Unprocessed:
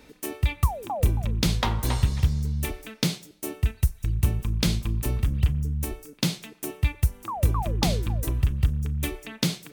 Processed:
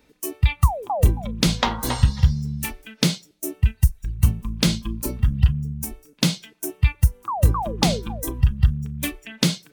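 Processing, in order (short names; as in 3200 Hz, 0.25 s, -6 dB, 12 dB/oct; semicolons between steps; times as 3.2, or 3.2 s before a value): spectral noise reduction 13 dB; gain +5.5 dB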